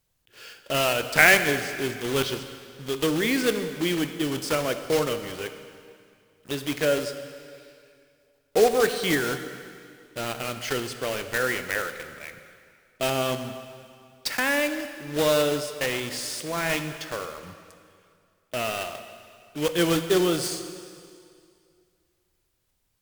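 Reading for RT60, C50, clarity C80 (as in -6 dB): 2.3 s, 9.5 dB, 10.5 dB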